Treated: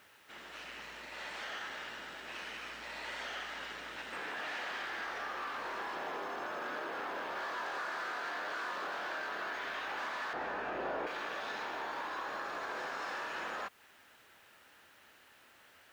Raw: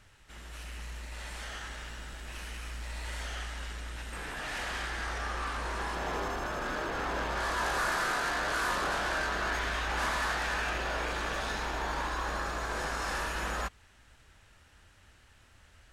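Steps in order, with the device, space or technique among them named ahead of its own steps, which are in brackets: baby monitor (BPF 310–4200 Hz; compressor, threshold -39 dBFS, peak gain reduction 11 dB; white noise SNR 29 dB); 10.33–11.07 tilt shelf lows +9.5 dB, about 1300 Hz; gain +2 dB

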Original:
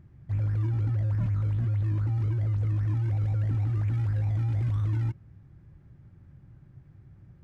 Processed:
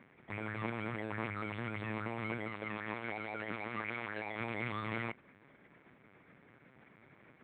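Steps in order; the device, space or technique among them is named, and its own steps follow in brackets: 2.48–4.4 HPF 200 Hz 6 dB/oct; talking toy (LPC vocoder at 8 kHz pitch kept; HPF 530 Hz 12 dB/oct; bell 2200 Hz +10 dB 0.25 oct); gain +10.5 dB

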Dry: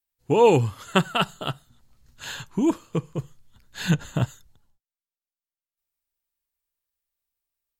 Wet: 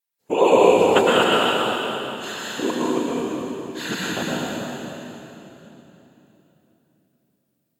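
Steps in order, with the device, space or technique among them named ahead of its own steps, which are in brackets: whispering ghost (whisperiser; HPF 340 Hz 12 dB/oct; reverb RT60 3.4 s, pre-delay 99 ms, DRR -6 dB)

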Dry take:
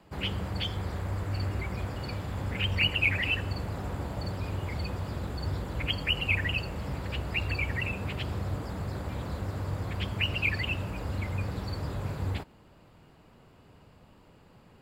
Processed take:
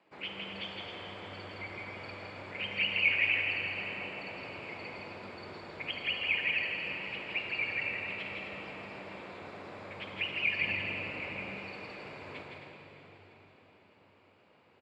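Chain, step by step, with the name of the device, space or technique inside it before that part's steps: station announcement (BPF 310–4400 Hz; bell 2300 Hz +8 dB 0.37 oct; loudspeakers at several distances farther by 56 m -4 dB, 91 m -9 dB; reverb RT60 4.8 s, pre-delay 11 ms, DRR 2 dB); 10.62–11.59 low shelf 400 Hz +5.5 dB; gain -8.5 dB

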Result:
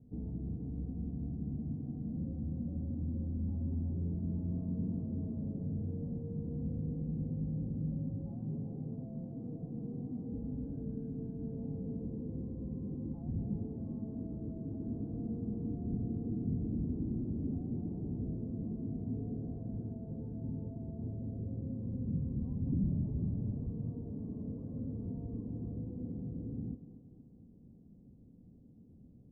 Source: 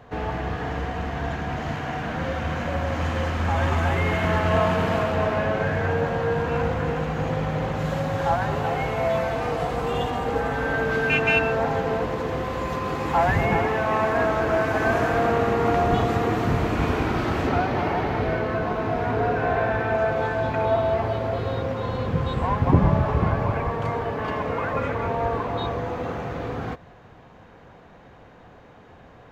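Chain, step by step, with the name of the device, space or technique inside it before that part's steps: 8.31–10.31 HPF 110 Hz 24 dB/oct; thinning echo 0.235 s, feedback 61%, high-pass 230 Hz, level -12 dB; overdriven synthesiser ladder filter (soft clip -22 dBFS, distortion -10 dB; ladder low-pass 280 Hz, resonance 45%)

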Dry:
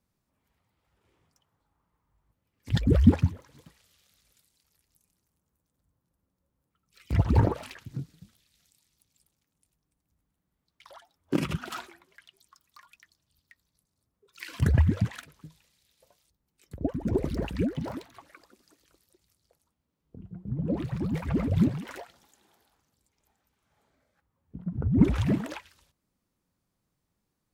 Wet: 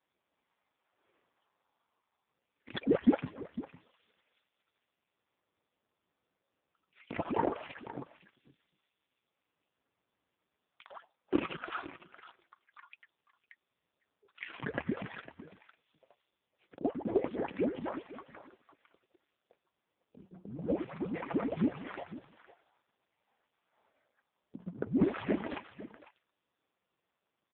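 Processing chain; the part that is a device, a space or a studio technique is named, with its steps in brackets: satellite phone (BPF 390–3400 Hz; echo 0.504 s -16 dB; gain +4 dB; AMR-NB 4.75 kbps 8000 Hz)

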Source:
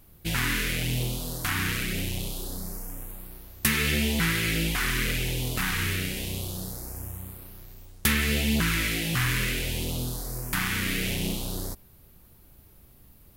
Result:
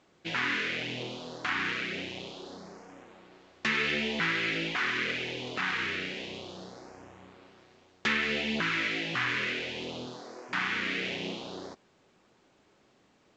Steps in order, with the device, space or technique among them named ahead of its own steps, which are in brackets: 10.06–10.48 HPF 89 Hz -> 300 Hz 24 dB/oct; telephone (BPF 320–3200 Hz; A-law 128 kbps 16000 Hz)

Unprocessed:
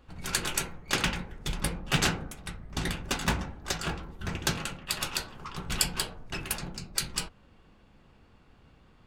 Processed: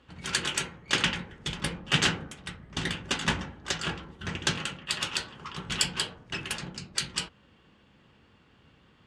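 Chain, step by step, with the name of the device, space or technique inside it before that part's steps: car door speaker (speaker cabinet 83–9000 Hz, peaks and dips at 710 Hz -4 dB, 1800 Hz +4 dB, 3100 Hz +7 dB)

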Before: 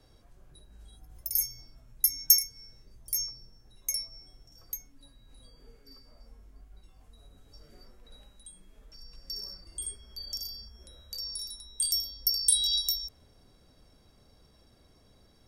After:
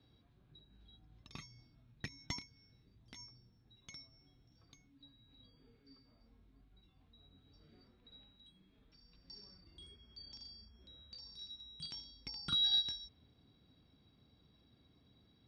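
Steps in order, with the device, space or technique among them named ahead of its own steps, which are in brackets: guitar amplifier (tube stage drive 13 dB, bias 0.75; tone controls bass +9 dB, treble +2 dB; speaker cabinet 100–4100 Hz, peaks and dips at 280 Hz +5 dB, 570 Hz -5 dB, 2400 Hz +3 dB, 3800 Hz +10 dB); gain -6 dB

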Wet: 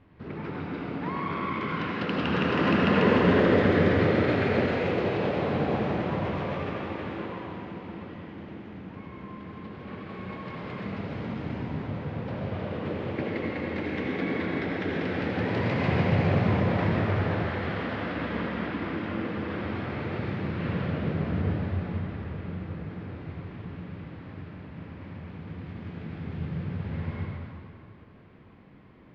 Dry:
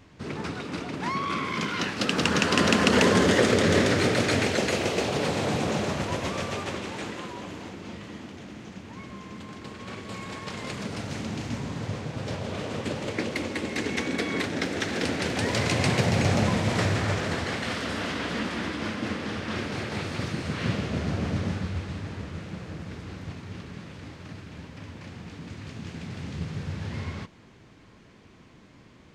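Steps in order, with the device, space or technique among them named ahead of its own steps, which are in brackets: air absorption 360 m; swimming-pool hall (reverb RT60 2.3 s, pre-delay 69 ms, DRR -2.5 dB; high shelf 4800 Hz -6 dB); gain -3.5 dB

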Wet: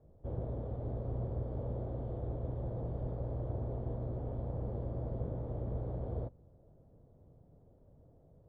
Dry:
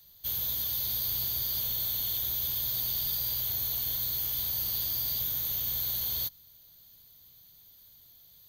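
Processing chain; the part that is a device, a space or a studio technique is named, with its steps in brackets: overdriven synthesiser ladder filter (soft clip -23.5 dBFS, distortion -20 dB; ladder low-pass 660 Hz, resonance 40%); gain +18 dB

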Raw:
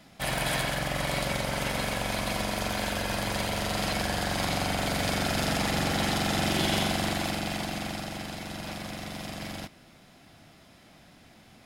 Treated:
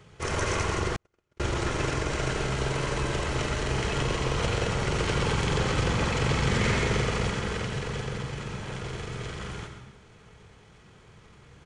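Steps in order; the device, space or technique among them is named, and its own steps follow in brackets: monster voice (pitch shift -8 st; low shelf 180 Hz +3.5 dB; echo 83 ms -11 dB; reverb RT60 0.95 s, pre-delay 94 ms, DRR 7.5 dB); 0.96–1.4 gate -20 dBFS, range -51 dB

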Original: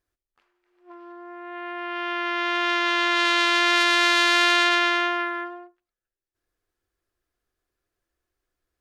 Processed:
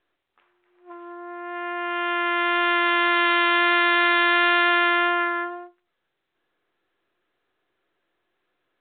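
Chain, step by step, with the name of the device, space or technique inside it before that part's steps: telephone (BPF 280–3500 Hz; soft clip -13.5 dBFS, distortion -15 dB; gain +4.5 dB; µ-law 64 kbps 8000 Hz)

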